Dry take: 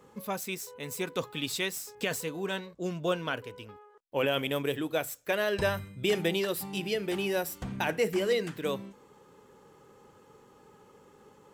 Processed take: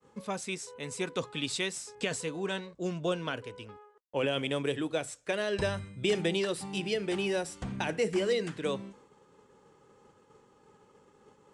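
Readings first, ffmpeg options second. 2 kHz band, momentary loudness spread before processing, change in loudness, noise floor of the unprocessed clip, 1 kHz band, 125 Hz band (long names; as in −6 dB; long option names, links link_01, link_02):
−2.5 dB, 9 LU, −1.0 dB, −59 dBFS, −3.0 dB, 0.0 dB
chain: -filter_complex "[0:a]agate=range=-33dB:threshold=-52dB:ratio=3:detection=peak,acrossover=split=500|3000[link_01][link_02][link_03];[link_02]acompressor=threshold=-33dB:ratio=6[link_04];[link_01][link_04][link_03]amix=inputs=3:normalize=0,aresample=22050,aresample=44100"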